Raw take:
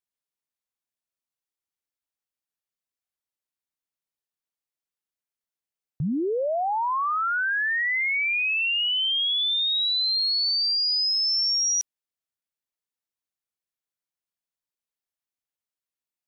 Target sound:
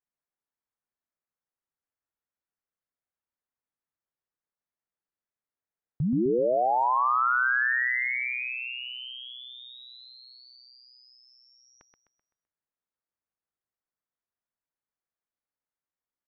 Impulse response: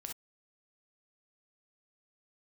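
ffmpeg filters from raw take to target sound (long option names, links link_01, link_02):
-filter_complex "[0:a]lowpass=frequency=1900:width=0.5412,lowpass=frequency=1900:width=1.3066,asplit=2[link_01][link_02];[link_02]aecho=0:1:128|256|384|512|640:0.562|0.236|0.0992|0.0417|0.0175[link_03];[link_01][link_03]amix=inputs=2:normalize=0"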